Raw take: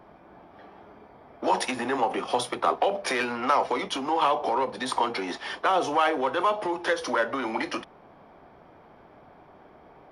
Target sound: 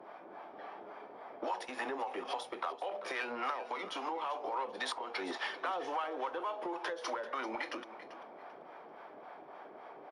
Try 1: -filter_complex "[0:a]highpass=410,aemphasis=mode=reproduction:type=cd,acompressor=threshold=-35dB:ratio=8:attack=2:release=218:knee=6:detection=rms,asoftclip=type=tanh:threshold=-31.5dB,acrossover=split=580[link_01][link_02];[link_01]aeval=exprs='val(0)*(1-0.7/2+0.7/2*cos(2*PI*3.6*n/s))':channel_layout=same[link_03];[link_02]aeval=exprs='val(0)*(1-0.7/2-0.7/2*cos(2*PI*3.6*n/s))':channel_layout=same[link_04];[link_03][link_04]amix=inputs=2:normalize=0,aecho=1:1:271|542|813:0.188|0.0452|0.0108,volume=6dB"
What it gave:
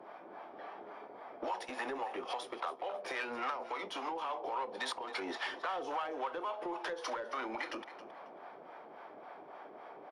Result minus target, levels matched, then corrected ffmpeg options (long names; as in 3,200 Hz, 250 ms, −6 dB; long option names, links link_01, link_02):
soft clipping: distortion +11 dB; echo 119 ms early
-filter_complex "[0:a]highpass=410,aemphasis=mode=reproduction:type=cd,acompressor=threshold=-35dB:ratio=8:attack=2:release=218:knee=6:detection=rms,asoftclip=type=tanh:threshold=-25dB,acrossover=split=580[link_01][link_02];[link_01]aeval=exprs='val(0)*(1-0.7/2+0.7/2*cos(2*PI*3.6*n/s))':channel_layout=same[link_03];[link_02]aeval=exprs='val(0)*(1-0.7/2-0.7/2*cos(2*PI*3.6*n/s))':channel_layout=same[link_04];[link_03][link_04]amix=inputs=2:normalize=0,aecho=1:1:390|780|1170:0.188|0.0452|0.0108,volume=6dB"